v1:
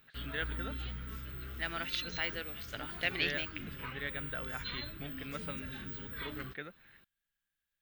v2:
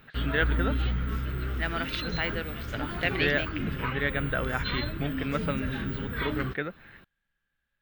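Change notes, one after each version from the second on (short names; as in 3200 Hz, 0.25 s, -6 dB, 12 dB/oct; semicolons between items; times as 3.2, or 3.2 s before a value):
second voice -5.0 dB; background: add high shelf 10000 Hz +6 dB; master: remove pre-emphasis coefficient 0.8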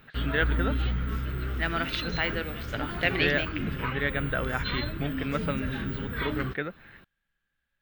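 reverb: on, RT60 1.1 s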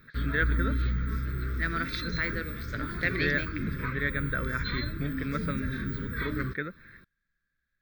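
master: add fixed phaser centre 2900 Hz, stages 6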